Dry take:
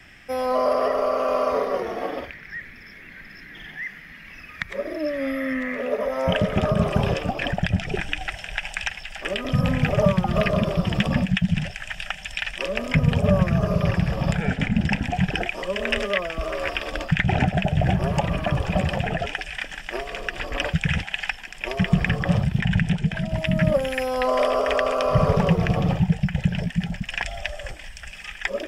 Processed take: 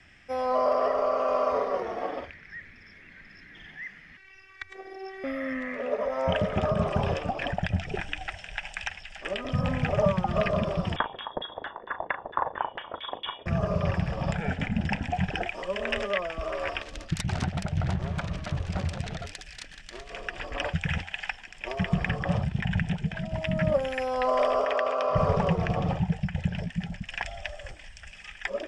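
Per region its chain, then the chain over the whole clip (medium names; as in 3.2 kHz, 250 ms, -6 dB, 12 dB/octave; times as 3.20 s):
4.17–5.24 s: bass shelf 360 Hz -4.5 dB + robot voice 384 Hz
10.96–13.46 s: frequency inversion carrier 3.5 kHz + LFO low-pass saw down 4.4 Hz 390–1900 Hz + doubling 38 ms -11.5 dB
16.82–20.10 s: self-modulated delay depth 0.71 ms + FFT filter 130 Hz 0 dB, 840 Hz -8 dB, 1.7 kHz -3 dB
24.65–25.16 s: high-pass 320 Hz 6 dB/octave + distance through air 62 m
whole clip: dynamic bell 860 Hz, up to +6 dB, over -35 dBFS, Q 0.86; low-pass 8.7 kHz 24 dB/octave; peaking EQ 86 Hz +7.5 dB 0.21 oct; trim -7.5 dB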